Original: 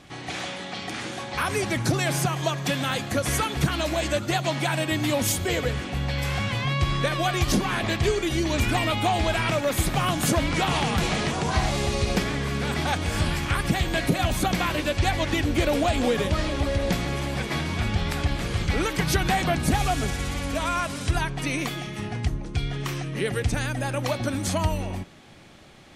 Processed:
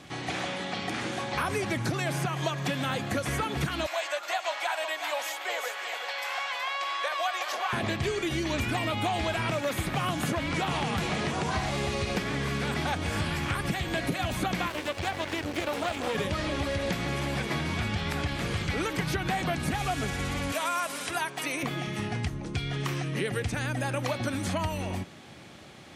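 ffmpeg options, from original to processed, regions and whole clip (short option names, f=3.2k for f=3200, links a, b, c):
-filter_complex "[0:a]asettb=1/sr,asplit=3[a][b][c];[a]atrim=end=3.864[d];[b]atrim=start=3.86:end=7.73,asetpts=PTS-STARTPTS,afade=t=in:d=0.004:c=qsin,afade=t=out:st=3.866:d=0.004:c=qsin,highpass=f=690:w=0.5412,highpass=f=690:w=1.3066,equalizer=f=9.5k:w=7.9:g=-14.5,aecho=1:1:369:0.355,atrim=end_sample=170667[e];[c]atrim=start=7.726[f];[d][e]acrossfade=d=0.004:c1=hsin:c2=qsin[g];[g][f]acrossfade=d=0.004:c1=qsin:c2=hsin,asettb=1/sr,asplit=3[h][i][j];[h]atrim=end=14.684[k];[i]atrim=start=14.68:end=16.15,asetpts=PTS-STARTPTS,afade=t=in:d=0.004:c=qsin,afade=t=out:st=1.466:d=0.004:c=qsin,highpass=82,equalizer=f=160:t=o:w=1.3:g=-10,aeval=exprs='max(val(0),0)':c=same[l];[j]atrim=start=16.146[m];[k][l]acrossfade=d=0.004:c1=hsin:c2=qsin[n];[n][m]acrossfade=d=0.004:c1=qsin:c2=hsin,asettb=1/sr,asplit=3[o][p][q];[o]atrim=end=20.524[r];[p]atrim=start=20.52:end=21.63,asetpts=PTS-STARTPTS,afade=t=in:d=0.004:c=qsin,afade=t=out:st=1.106:d=0.004:c=qsin,highpass=f=320:p=1,aemphasis=mode=production:type=riaa[s];[q]atrim=start=21.626[t];[r][s]acrossfade=d=0.004:c1=hsin:c2=qsin[u];[u][t]acrossfade=d=0.004:c1=qsin:c2=hsin,highpass=76,acrossover=split=1200|3000[v][w][x];[v]acompressor=threshold=-30dB:ratio=4[y];[w]acompressor=threshold=-37dB:ratio=4[z];[x]acompressor=threshold=-44dB:ratio=4[aa];[y][z][aa]amix=inputs=3:normalize=0,volume=1.5dB"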